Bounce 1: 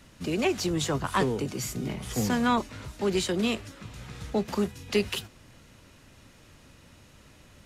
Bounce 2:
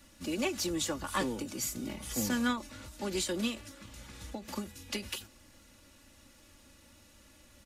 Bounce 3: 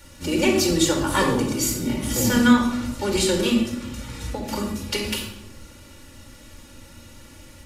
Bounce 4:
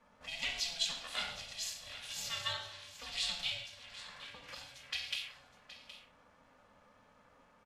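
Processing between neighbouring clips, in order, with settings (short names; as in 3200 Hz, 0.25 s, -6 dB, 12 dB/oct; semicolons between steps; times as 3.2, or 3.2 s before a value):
high shelf 5500 Hz +9.5 dB; comb 3.5 ms, depth 66%; ending taper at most 150 dB/s; gain -7.5 dB
shoebox room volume 3200 m³, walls furnished, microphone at 4.5 m; gain +8.5 dB
auto-wah 670–3500 Hz, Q 2.2, up, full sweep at -23.5 dBFS; ring modulator 340 Hz; echo 0.769 s -14.5 dB; gain -3 dB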